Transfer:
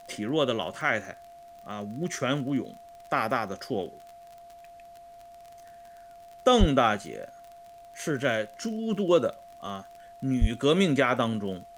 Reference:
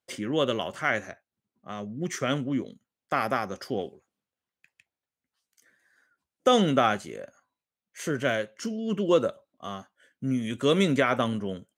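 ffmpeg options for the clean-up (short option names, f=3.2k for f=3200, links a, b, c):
-filter_complex "[0:a]adeclick=t=4,bandreject=f=690:w=30,asplit=3[a][b][c];[a]afade=t=out:st=6.59:d=0.02[d];[b]highpass=f=140:w=0.5412,highpass=f=140:w=1.3066,afade=t=in:st=6.59:d=0.02,afade=t=out:st=6.71:d=0.02[e];[c]afade=t=in:st=6.71:d=0.02[f];[d][e][f]amix=inputs=3:normalize=0,asplit=3[g][h][i];[g]afade=t=out:st=10.4:d=0.02[j];[h]highpass=f=140:w=0.5412,highpass=f=140:w=1.3066,afade=t=in:st=10.4:d=0.02,afade=t=out:st=10.52:d=0.02[k];[i]afade=t=in:st=10.52:d=0.02[l];[j][k][l]amix=inputs=3:normalize=0,agate=range=-21dB:threshold=-41dB"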